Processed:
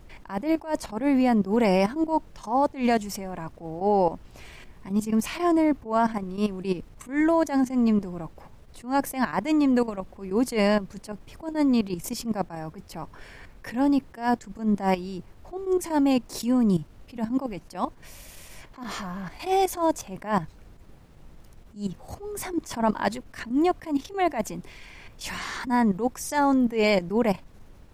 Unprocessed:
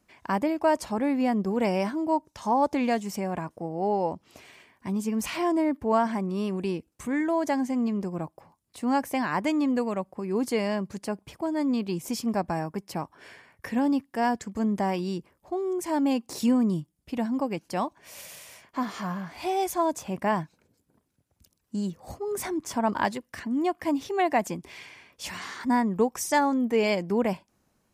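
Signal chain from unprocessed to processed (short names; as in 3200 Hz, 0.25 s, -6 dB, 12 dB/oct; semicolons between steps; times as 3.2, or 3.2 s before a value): level quantiser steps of 14 dB; added noise brown -54 dBFS; attack slew limiter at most 180 dB/s; gain +8 dB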